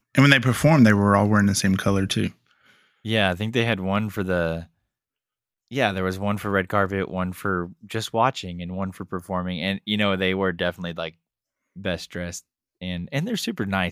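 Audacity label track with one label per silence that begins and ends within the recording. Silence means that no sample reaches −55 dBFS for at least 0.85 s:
4.670000	5.680000	silence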